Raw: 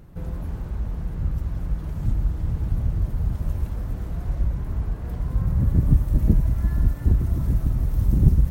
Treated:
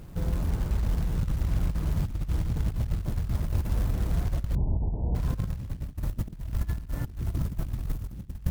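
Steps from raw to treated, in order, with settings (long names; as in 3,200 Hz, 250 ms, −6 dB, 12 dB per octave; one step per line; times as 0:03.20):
log-companded quantiser 6 bits
0:04.55–0:05.15: Butterworth low-pass 960 Hz 96 dB per octave
compressor whose output falls as the input rises −25 dBFS, ratio −0.5
level −2 dB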